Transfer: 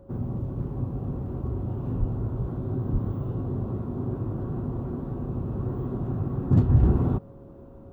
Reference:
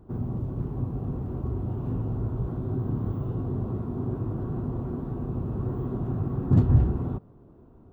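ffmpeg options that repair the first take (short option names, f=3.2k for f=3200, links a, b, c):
-filter_complex "[0:a]bandreject=f=550:w=30,asplit=3[a][b][c];[a]afade=t=out:st=1.99:d=0.02[d];[b]highpass=f=140:w=0.5412,highpass=f=140:w=1.3066,afade=t=in:st=1.99:d=0.02,afade=t=out:st=2.11:d=0.02[e];[c]afade=t=in:st=2.11:d=0.02[f];[d][e][f]amix=inputs=3:normalize=0,asplit=3[g][h][i];[g]afade=t=out:st=2.92:d=0.02[j];[h]highpass=f=140:w=0.5412,highpass=f=140:w=1.3066,afade=t=in:st=2.92:d=0.02,afade=t=out:st=3.04:d=0.02[k];[i]afade=t=in:st=3.04:d=0.02[l];[j][k][l]amix=inputs=3:normalize=0,asetnsamples=n=441:p=0,asendcmd='6.83 volume volume -6dB',volume=0dB"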